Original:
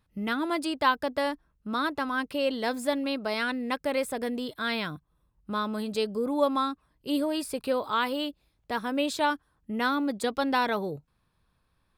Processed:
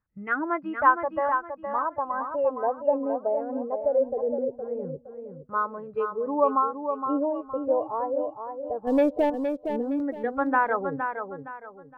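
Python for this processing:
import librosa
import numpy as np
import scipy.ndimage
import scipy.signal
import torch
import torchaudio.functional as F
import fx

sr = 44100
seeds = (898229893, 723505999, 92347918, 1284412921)

y = scipy.signal.sosfilt(scipy.signal.butter(4, 2300.0, 'lowpass', fs=sr, output='sos'), x)
y = fx.filter_lfo_lowpass(y, sr, shape='saw_down', hz=0.2, low_hz=410.0, high_hz=1700.0, q=2.1)
y = fx.leveller(y, sr, passes=2, at=(8.87, 9.3))
y = fx.noise_reduce_blind(y, sr, reduce_db=13)
y = fx.echo_feedback(y, sr, ms=465, feedback_pct=32, wet_db=-7.0)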